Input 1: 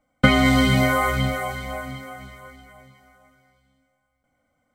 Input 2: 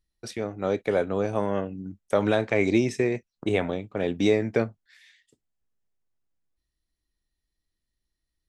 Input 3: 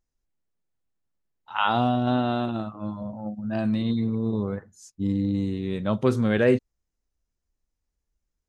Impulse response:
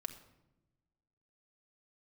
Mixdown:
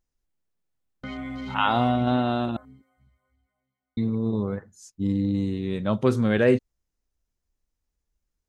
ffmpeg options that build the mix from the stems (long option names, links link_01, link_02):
-filter_complex "[0:a]afwtdn=0.0398,adelay=800,volume=-17.5dB[link_01];[2:a]volume=0.5dB,asplit=3[link_02][link_03][link_04];[link_02]atrim=end=2.57,asetpts=PTS-STARTPTS,afade=type=out:start_time=2.566:duration=0.004:curve=hsin[link_05];[link_03]atrim=start=2.57:end=3.97,asetpts=PTS-STARTPTS,volume=0[link_06];[link_04]atrim=start=3.97,asetpts=PTS-STARTPTS,afade=type=in:duration=0.004:curve=hsin[link_07];[link_05][link_06][link_07]concat=n=3:v=0:a=1[link_08];[link_01]equalizer=frequency=270:width_type=o:width=0.42:gain=5.5,alimiter=level_in=3dB:limit=-24dB:level=0:latency=1:release=27,volume=-3dB,volume=0dB[link_09];[link_08][link_09]amix=inputs=2:normalize=0"